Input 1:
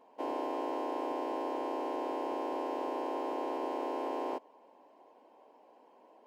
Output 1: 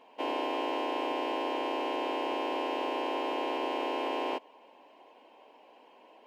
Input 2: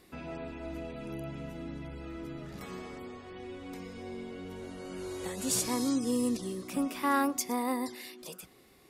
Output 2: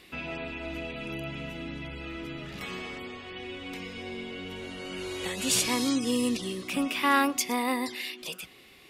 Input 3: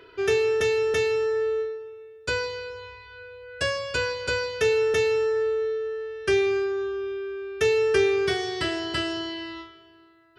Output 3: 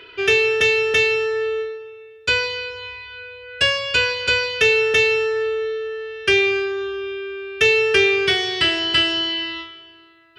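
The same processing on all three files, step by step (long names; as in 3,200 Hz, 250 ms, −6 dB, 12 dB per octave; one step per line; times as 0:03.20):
parametric band 2,800 Hz +13.5 dB 1.2 octaves
level +2 dB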